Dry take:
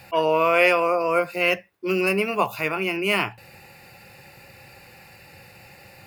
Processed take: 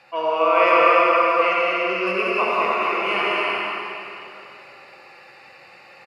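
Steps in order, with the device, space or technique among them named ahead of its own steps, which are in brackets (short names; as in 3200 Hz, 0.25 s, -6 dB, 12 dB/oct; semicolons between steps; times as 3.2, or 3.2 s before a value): 2.67–3.07 HPF 340 Hz 24 dB/oct; station announcement (BPF 340–4500 Hz; bell 1200 Hz +8.5 dB 0.24 oct; loudspeakers at several distances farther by 65 m -5 dB, 100 m -5 dB; reverb RT60 2.9 s, pre-delay 56 ms, DRR -3.5 dB); gain -4.5 dB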